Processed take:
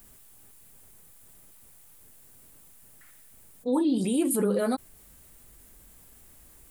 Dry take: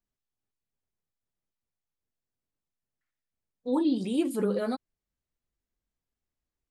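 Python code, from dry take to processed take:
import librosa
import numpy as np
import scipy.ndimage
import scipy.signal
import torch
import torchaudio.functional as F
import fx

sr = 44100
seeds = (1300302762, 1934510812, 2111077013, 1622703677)

y = fx.high_shelf_res(x, sr, hz=7200.0, db=9.0, q=1.5)
y = fx.env_flatten(y, sr, amount_pct=50)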